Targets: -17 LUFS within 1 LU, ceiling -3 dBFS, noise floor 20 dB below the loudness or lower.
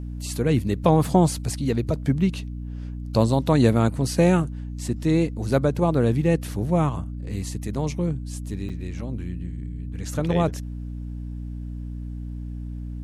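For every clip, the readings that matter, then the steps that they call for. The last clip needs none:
dropouts 1; longest dropout 6.3 ms; hum 60 Hz; highest harmonic 300 Hz; hum level -30 dBFS; loudness -23.5 LUFS; peak level -5.5 dBFS; loudness target -17.0 LUFS
-> interpolate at 8.69 s, 6.3 ms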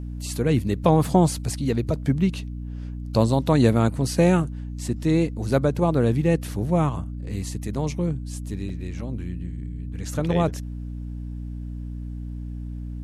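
dropouts 0; hum 60 Hz; highest harmonic 300 Hz; hum level -30 dBFS
-> de-hum 60 Hz, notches 5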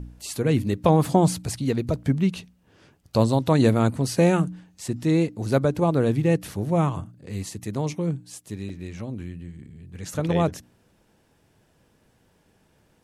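hum not found; loudness -23.5 LUFS; peak level -5.5 dBFS; loudness target -17.0 LUFS
-> trim +6.5 dB; peak limiter -3 dBFS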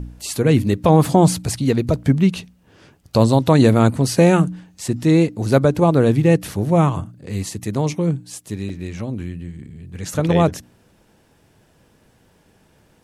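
loudness -17.5 LUFS; peak level -3.0 dBFS; noise floor -57 dBFS

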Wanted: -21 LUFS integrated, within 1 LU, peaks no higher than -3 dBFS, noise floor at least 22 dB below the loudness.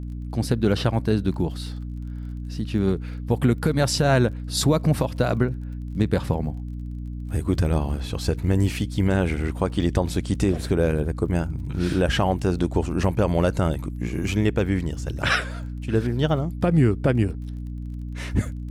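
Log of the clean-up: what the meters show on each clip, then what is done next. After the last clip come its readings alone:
tick rate 33 per s; hum 60 Hz; highest harmonic 300 Hz; hum level -29 dBFS; loudness -24.0 LUFS; peak level -7.5 dBFS; loudness target -21.0 LUFS
-> de-click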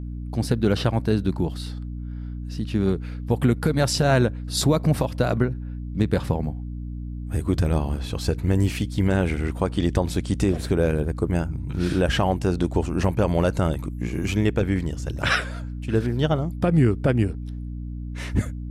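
tick rate 0 per s; hum 60 Hz; highest harmonic 300 Hz; hum level -29 dBFS
-> hum notches 60/120/180/240/300 Hz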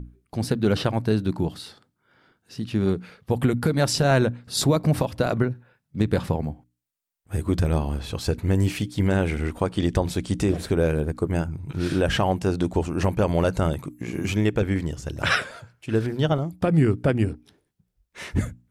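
hum not found; loudness -24.5 LUFS; peak level -8.5 dBFS; loudness target -21.0 LUFS
-> trim +3.5 dB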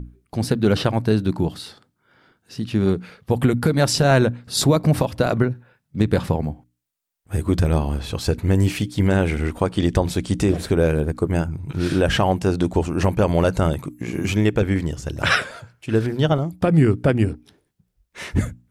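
loudness -21.0 LUFS; peak level -5.0 dBFS; noise floor -73 dBFS

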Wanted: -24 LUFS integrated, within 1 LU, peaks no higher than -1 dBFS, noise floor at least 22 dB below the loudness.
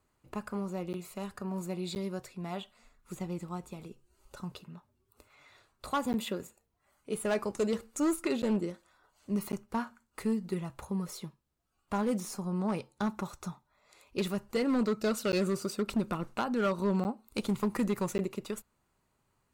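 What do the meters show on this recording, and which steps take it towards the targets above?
clipped samples 1.3%; clipping level -23.5 dBFS; dropouts 8; longest dropout 9.9 ms; loudness -34.0 LUFS; peak level -23.5 dBFS; loudness target -24.0 LUFS
-> clip repair -23.5 dBFS; interpolate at 0.93/1.95/6.13/8.42/9.52/15.32/17.04/18.18 s, 9.9 ms; trim +10 dB

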